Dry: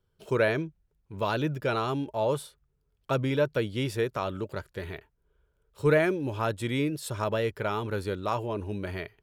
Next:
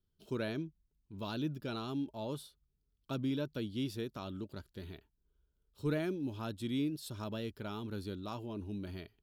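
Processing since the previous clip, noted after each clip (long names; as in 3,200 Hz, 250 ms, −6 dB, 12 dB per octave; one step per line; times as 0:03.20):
octave-band graphic EQ 125/250/500/1,000/2,000/4,000/8,000 Hz −6/+6/−11/−6/−12/+4/−7 dB
level −5 dB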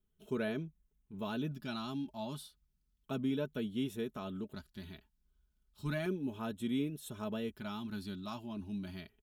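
comb filter 4.7 ms, depth 55%
auto-filter notch square 0.33 Hz 460–4,700 Hz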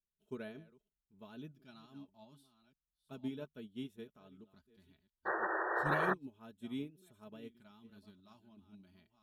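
delay that plays each chunk backwards 547 ms, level −12 dB
sound drawn into the spectrogram noise, 0:05.25–0:06.14, 320–1,900 Hz −31 dBFS
expander for the loud parts 2.5 to 1, over −41 dBFS
level −1 dB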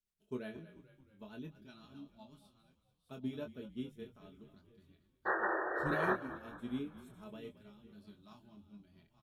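rotating-speaker cabinet horn 8 Hz, later 1 Hz, at 0:02.56
double-tracking delay 24 ms −6 dB
echo with shifted repeats 220 ms, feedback 56%, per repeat −38 Hz, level −15 dB
level +2.5 dB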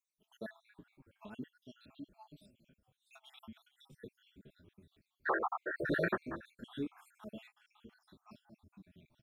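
time-frequency cells dropped at random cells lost 64%
level +4 dB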